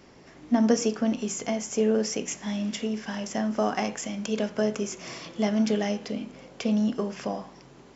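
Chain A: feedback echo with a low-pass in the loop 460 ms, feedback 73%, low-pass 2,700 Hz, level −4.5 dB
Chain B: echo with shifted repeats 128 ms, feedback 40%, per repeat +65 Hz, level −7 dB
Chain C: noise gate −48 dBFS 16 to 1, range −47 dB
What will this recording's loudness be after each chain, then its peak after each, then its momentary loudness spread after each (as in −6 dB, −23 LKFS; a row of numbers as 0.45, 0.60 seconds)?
−26.0, −27.0, −28.0 LKFS; −10.0, −10.0, −10.0 dBFS; 6, 10, 10 LU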